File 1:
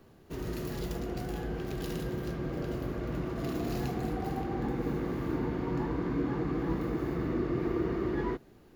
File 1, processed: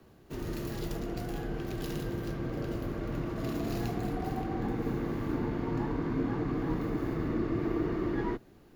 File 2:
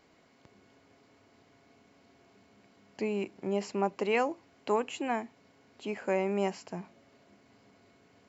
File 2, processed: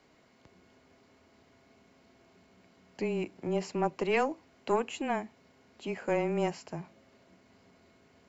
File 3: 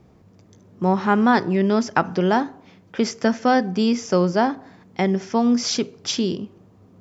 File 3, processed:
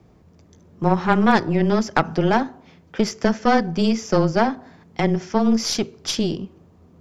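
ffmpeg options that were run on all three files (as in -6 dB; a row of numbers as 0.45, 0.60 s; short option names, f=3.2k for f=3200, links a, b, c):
-af "afreqshift=-16,aeval=exprs='0.708*(cos(1*acos(clip(val(0)/0.708,-1,1)))-cos(1*PI/2))+0.112*(cos(4*acos(clip(val(0)/0.708,-1,1)))-cos(4*PI/2))':c=same,aeval=exprs='clip(val(0),-1,0.335)':c=same"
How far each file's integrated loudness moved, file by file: 0.0, 0.0, +0.5 LU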